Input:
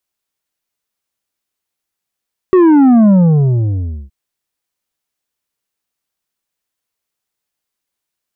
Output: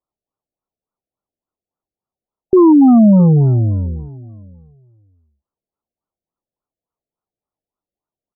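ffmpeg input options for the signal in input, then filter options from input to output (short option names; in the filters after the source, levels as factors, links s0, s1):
-f lavfi -i "aevalsrc='0.531*clip((1.57-t)/1.01,0,1)*tanh(2.24*sin(2*PI*380*1.57/log(65/380)*(exp(log(65/380)*t/1.57)-1)))/tanh(2.24)':d=1.57:s=44100"
-af "aecho=1:1:664|1328:0.0891|0.0143,afftfilt=real='re*lt(b*sr/1024,720*pow(1500/720,0.5+0.5*sin(2*PI*3.5*pts/sr)))':imag='im*lt(b*sr/1024,720*pow(1500/720,0.5+0.5*sin(2*PI*3.5*pts/sr)))':win_size=1024:overlap=0.75"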